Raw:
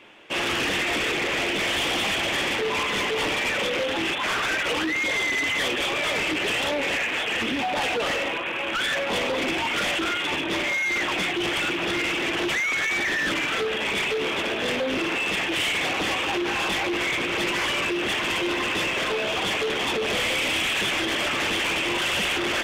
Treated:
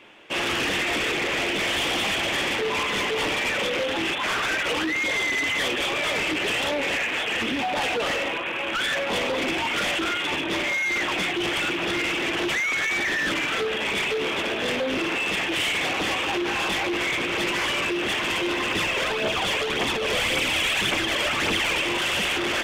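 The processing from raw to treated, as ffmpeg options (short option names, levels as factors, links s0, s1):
-filter_complex "[0:a]asettb=1/sr,asplit=3[s0][s1][s2];[s0]atrim=end=18.714[s3];[s1]atrim=start=18.71:end=21.84,asetpts=PTS-STARTPTS,afade=t=in:d=0.004:c=qsin,afade=t=out:st=3.126:d=0.004:c=qsin,aphaser=in_gain=1:out_gain=1:delay=2.2:decay=0.44:speed=1.8:type=triangular[s4];[s2]atrim=start=21.836[s5];[s3][s4]acrossfade=d=0.004:c1=hsin:c2=qsin[s6];[s6][s5]acrossfade=d=0.004:c1=qsin:c2=hsin"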